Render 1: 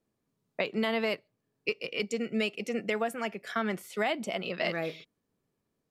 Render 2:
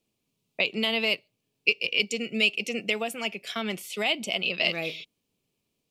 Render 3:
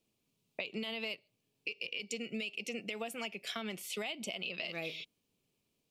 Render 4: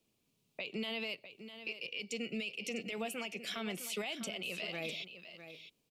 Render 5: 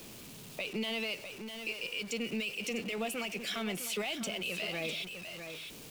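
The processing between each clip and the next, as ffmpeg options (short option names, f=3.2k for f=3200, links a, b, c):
-af "highshelf=f=2.1k:t=q:w=3:g=7"
-af "alimiter=limit=-17.5dB:level=0:latency=1:release=94,acompressor=threshold=-34dB:ratio=6,volume=-2dB"
-filter_complex "[0:a]acrossover=split=110[a][b];[b]alimiter=level_in=8dB:limit=-24dB:level=0:latency=1:release=13,volume=-8dB[c];[a][c]amix=inputs=2:normalize=0,aecho=1:1:652:0.266,volume=2dB"
-af "aeval=exprs='val(0)+0.5*0.00562*sgn(val(0))':c=same,volume=2dB"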